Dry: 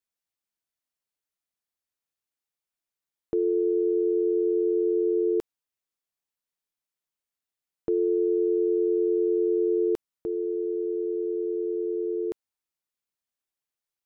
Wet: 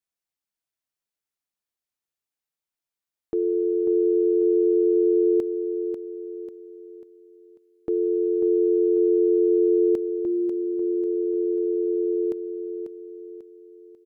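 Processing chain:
dynamic equaliser 230 Hz, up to +5 dB, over −37 dBFS, Q 0.94
on a send: repeating echo 543 ms, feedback 42%, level −8 dB
on the sum: level −1.5 dB

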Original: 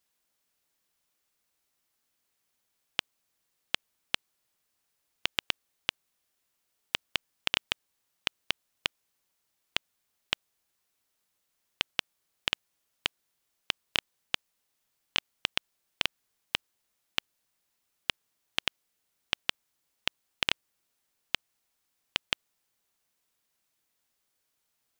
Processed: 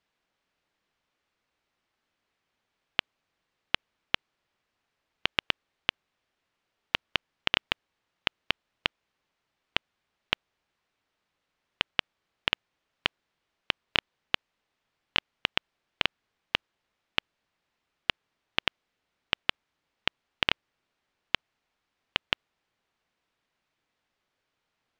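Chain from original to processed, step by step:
low-pass filter 3,100 Hz 12 dB per octave
level +5 dB

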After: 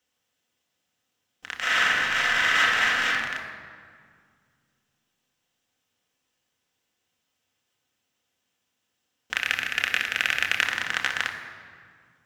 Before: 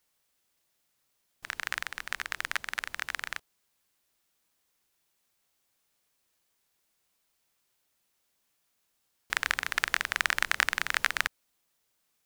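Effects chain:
0:01.57–0:03.04: thrown reverb, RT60 1.2 s, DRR −12 dB
0:09.34–0:10.63: thirty-one-band graphic EQ 1,000 Hz −10 dB, 2,500 Hz +8 dB, 12,500 Hz +9 dB
convolution reverb RT60 2.1 s, pre-delay 3 ms, DRR 2 dB
level −6 dB

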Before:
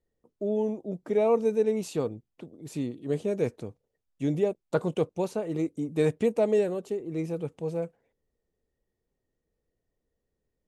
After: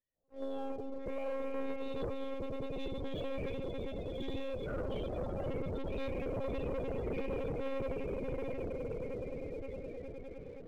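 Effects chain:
spectrum smeared in time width 127 ms
first difference
in parallel at +3 dB: compressor whose output falls as the input rises −57 dBFS, ratio −0.5
on the sum: delay with pitch and tempo change per echo 160 ms, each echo −1 semitone, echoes 3, each echo −6 dB
on a send: echo that builds up and dies away 104 ms, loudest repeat 8, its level −12.5 dB
on the sum: one-pitch LPC vocoder at 8 kHz 270 Hz
spectral peaks only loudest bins 32
parametric band 2,000 Hz −3.5 dB 1.1 octaves
leveller curve on the samples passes 2
level +5.5 dB

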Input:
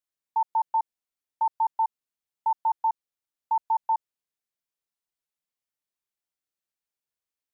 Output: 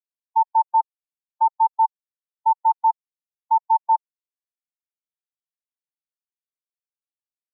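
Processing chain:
every bin expanded away from the loudest bin 1.5 to 1
level +7.5 dB

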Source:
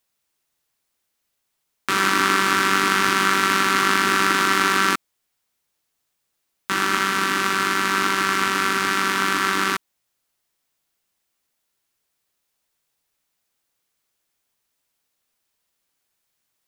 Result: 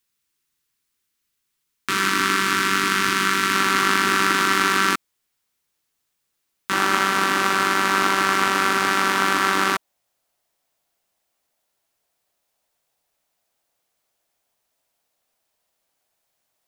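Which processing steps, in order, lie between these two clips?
parametric band 670 Hz −12.5 dB 0.82 octaves, from 0:03.55 −2.5 dB, from 0:06.73 +9.5 dB

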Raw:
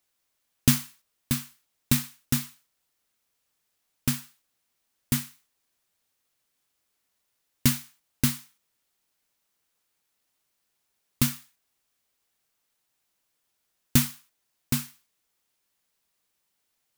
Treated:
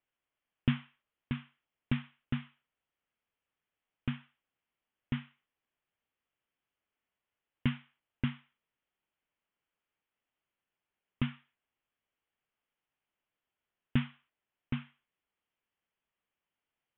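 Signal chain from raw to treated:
Butterworth low-pass 3,300 Hz 96 dB per octave
level −7 dB

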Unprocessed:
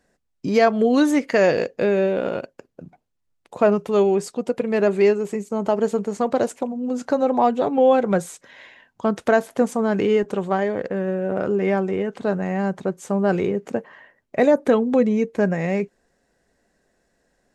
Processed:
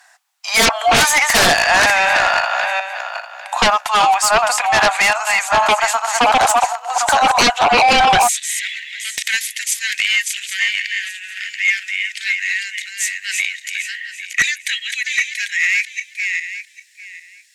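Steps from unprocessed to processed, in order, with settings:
feedback delay that plays each chunk backwards 400 ms, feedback 40%, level −5 dB
Butterworth high-pass 720 Hz 72 dB per octave, from 0:08.27 1,900 Hz
sine wavefolder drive 15 dB, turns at −10.5 dBFS
level +2 dB

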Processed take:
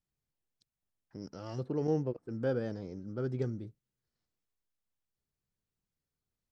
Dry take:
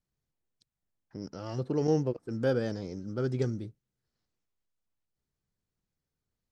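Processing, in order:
0:01.66–0:03.67: high-shelf EQ 3,400 Hz −10.5 dB
level −4 dB

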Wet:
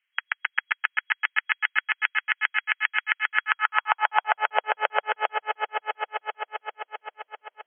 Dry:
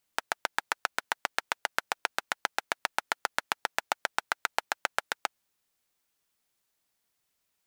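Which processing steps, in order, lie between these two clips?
echo that builds up and dies away 131 ms, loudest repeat 5, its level −9.5 dB
high-pass filter sweep 1,900 Hz → 500 Hz, 0:03.27–0:04.65
brick-wall band-pass 170–3,300 Hz
level +2.5 dB

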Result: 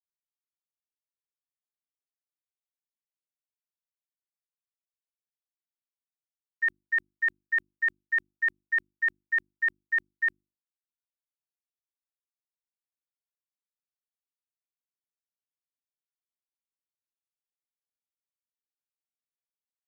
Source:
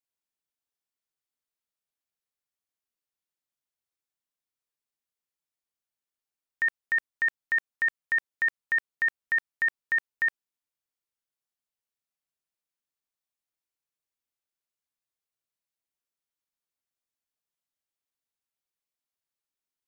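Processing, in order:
noise gate −27 dBFS, range −26 dB
mains-hum notches 50/100/150/200/250/300/350 Hz

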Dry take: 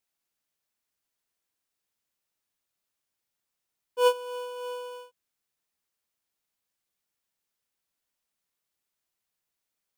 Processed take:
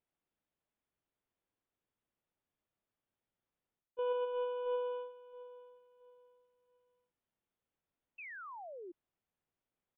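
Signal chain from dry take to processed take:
noise gate −34 dBFS, range −9 dB
tilt shelving filter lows +7 dB, about 1,200 Hz
brickwall limiter −20 dBFS, peak gain reduction 11 dB
reversed playback
downward compressor 8 to 1, threshold −39 dBFS, peak gain reduction 15.5 dB
reversed playback
downsampling to 8,000 Hz
on a send: repeating echo 672 ms, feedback 29%, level −17 dB
on the sum: sound drawn into the spectrogram fall, 0:08.18–0:08.92, 330–2,700 Hz −53 dBFS
level +5.5 dB

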